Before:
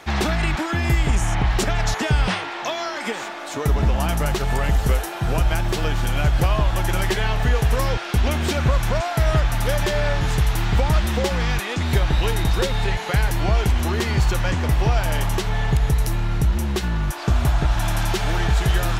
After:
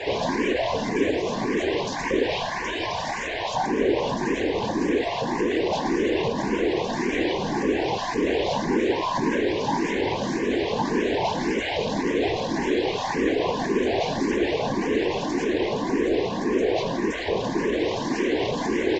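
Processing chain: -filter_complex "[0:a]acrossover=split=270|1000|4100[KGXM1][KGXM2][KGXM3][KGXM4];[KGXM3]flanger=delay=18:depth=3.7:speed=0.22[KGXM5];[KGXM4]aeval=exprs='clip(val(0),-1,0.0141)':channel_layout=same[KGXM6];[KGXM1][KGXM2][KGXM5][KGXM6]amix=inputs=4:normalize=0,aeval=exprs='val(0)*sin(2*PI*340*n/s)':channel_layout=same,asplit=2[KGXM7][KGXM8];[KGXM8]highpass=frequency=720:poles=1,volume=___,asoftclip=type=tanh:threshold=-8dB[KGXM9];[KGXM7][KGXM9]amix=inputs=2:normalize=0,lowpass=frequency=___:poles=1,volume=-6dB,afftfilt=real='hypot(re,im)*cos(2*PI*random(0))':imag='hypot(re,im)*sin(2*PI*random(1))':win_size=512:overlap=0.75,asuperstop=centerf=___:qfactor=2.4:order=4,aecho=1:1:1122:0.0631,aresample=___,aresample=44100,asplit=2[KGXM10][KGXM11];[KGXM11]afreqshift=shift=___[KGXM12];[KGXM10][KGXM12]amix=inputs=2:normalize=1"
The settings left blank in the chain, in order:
39dB, 1900, 1300, 16000, 1.8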